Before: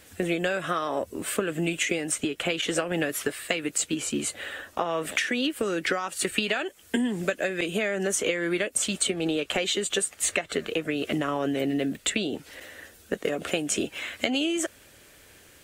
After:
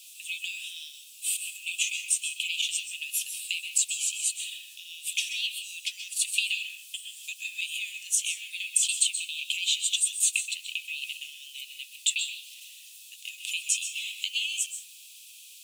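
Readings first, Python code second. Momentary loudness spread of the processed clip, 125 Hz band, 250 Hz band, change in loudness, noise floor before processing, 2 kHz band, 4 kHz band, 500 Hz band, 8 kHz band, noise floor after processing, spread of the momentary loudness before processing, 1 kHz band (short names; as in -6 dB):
16 LU, under -40 dB, under -40 dB, -1.0 dB, -54 dBFS, -3.5 dB, +2.0 dB, under -40 dB, +3.5 dB, -49 dBFS, 5 LU, under -40 dB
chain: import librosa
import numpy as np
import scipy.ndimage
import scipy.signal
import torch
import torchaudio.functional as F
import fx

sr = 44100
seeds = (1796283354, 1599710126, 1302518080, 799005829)

p1 = fx.level_steps(x, sr, step_db=19)
p2 = x + (p1 * 10.0 ** (-1.0 / 20.0))
p3 = fx.dmg_noise_colour(p2, sr, seeds[0], colour='pink', level_db=-48.0)
p4 = scipy.signal.sosfilt(scipy.signal.cheby1(6, 3, 2500.0, 'highpass', fs=sr, output='sos'), p3)
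p5 = fx.rev_plate(p4, sr, seeds[1], rt60_s=0.8, hf_ratio=0.35, predelay_ms=115, drr_db=4.5)
y = p5 * 10.0 ** (1.5 / 20.0)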